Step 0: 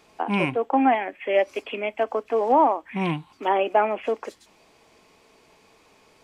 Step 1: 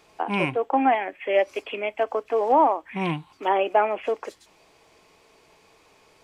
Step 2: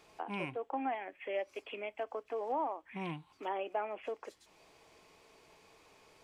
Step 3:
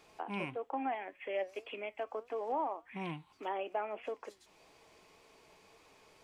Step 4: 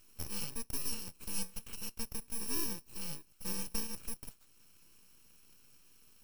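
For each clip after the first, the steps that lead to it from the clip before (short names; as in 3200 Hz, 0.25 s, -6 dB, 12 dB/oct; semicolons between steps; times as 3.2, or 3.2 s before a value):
bell 230 Hz -7.5 dB 0.39 oct
compressor 1.5:1, threshold -48 dBFS, peak gain reduction 12.5 dB; gain -5 dB
flange 1.7 Hz, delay 3.5 ms, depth 2 ms, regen +89%; gain +4.5 dB
FFT order left unsorted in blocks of 64 samples; full-wave rectifier; gain +2 dB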